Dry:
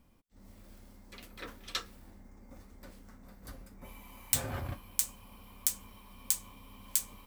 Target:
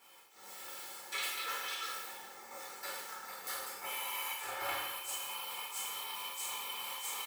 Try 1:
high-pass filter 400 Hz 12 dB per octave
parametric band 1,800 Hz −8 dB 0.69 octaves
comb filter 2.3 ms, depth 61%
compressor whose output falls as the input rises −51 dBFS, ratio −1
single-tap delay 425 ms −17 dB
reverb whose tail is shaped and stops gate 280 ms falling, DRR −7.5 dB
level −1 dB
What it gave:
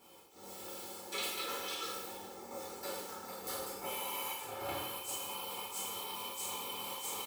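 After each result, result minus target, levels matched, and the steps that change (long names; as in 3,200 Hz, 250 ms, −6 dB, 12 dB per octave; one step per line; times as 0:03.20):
500 Hz band +7.5 dB; 2,000 Hz band −4.0 dB
change: high-pass filter 870 Hz 12 dB per octave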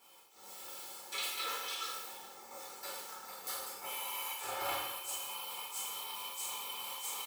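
2,000 Hz band −3.5 dB
remove: parametric band 1,800 Hz −8 dB 0.69 octaves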